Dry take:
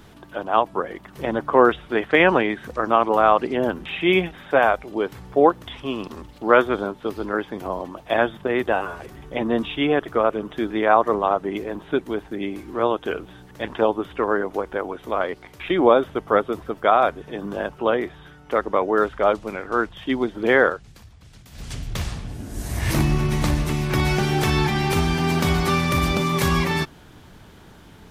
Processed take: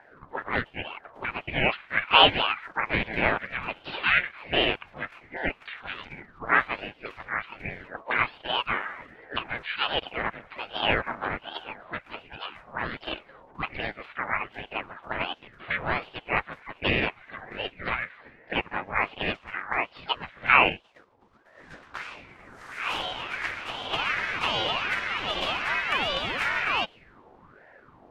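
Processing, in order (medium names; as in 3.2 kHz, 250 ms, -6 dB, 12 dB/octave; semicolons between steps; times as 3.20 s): harmony voices -5 st -2 dB, +3 st -7 dB; auto-wah 490–1900 Hz, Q 4.5, up, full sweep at -21 dBFS; ring modulator with a swept carrier 700 Hz, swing 75%, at 1.3 Hz; trim +7.5 dB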